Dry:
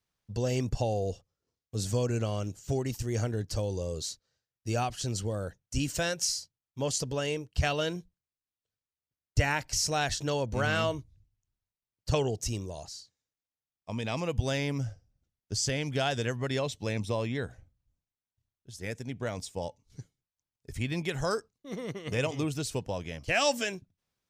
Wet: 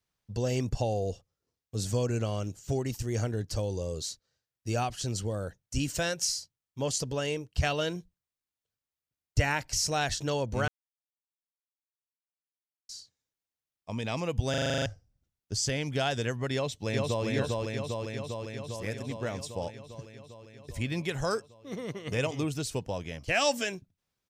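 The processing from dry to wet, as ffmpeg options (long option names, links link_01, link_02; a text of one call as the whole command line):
ffmpeg -i in.wav -filter_complex "[0:a]asplit=2[link_01][link_02];[link_02]afade=type=in:start_time=16.53:duration=0.01,afade=type=out:start_time=17.25:duration=0.01,aecho=0:1:400|800|1200|1600|2000|2400|2800|3200|3600|4000|4400|4800:0.841395|0.631046|0.473285|0.354964|0.266223|0.199667|0.14975|0.112313|0.0842345|0.0631759|0.0473819|0.0355364[link_03];[link_01][link_03]amix=inputs=2:normalize=0,asplit=12[link_04][link_05][link_06][link_07][link_08][link_09][link_10][link_11][link_12][link_13][link_14][link_15];[link_04]atrim=end=10.68,asetpts=PTS-STARTPTS,afade=type=out:start_time=10.676:duration=0.004:curve=hsin[link_16];[link_05]atrim=start=10.68:end=12.89,asetpts=PTS-STARTPTS,volume=0[link_17];[link_06]atrim=start=12.89:end=14.542,asetpts=PTS-STARTPTS,afade=type=in:duration=0.004:curve=hsin[link_18];[link_07]atrim=start=14.498:end=14.542[link_19];[link_08]atrim=start=14.498:end=14.542[link_20];[link_09]atrim=start=14.498:end=14.542[link_21];[link_10]atrim=start=14.498:end=14.542[link_22];[link_11]atrim=start=14.498:end=14.542[link_23];[link_12]atrim=start=14.498:end=14.542[link_24];[link_13]atrim=start=14.498:end=14.542[link_25];[link_14]atrim=start=14.498:end=14.542[link_26];[link_15]atrim=start=14.858[link_27];[link_16][link_17][link_18]concat=n=3:v=0:a=1[link_28];[link_28][link_19]acrossfade=duration=0.004:curve1=hsin:curve2=hsin[link_29];[link_29][link_20]acrossfade=duration=0.004:curve1=hsin:curve2=hsin[link_30];[link_30][link_21]acrossfade=duration=0.004:curve1=hsin:curve2=hsin[link_31];[link_31][link_22]acrossfade=duration=0.004:curve1=hsin:curve2=hsin[link_32];[link_32][link_23]acrossfade=duration=0.004:curve1=hsin:curve2=hsin[link_33];[link_33][link_24]acrossfade=duration=0.004:curve1=hsin:curve2=hsin[link_34];[link_34][link_25]acrossfade=duration=0.004:curve1=hsin:curve2=hsin[link_35];[link_35][link_26]acrossfade=duration=0.004:curve1=hsin:curve2=hsin[link_36];[link_36][link_27]acrossfade=duration=0.004:curve1=hsin:curve2=hsin" out.wav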